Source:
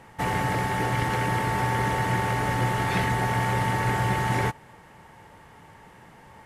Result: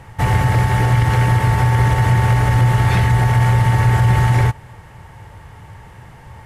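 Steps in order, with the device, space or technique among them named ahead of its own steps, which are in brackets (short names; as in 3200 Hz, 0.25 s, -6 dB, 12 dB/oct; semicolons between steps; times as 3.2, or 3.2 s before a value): car stereo with a boomy subwoofer (resonant low shelf 150 Hz +10.5 dB, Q 1.5; limiter -12.5 dBFS, peak gain reduction 5 dB); gain +6.5 dB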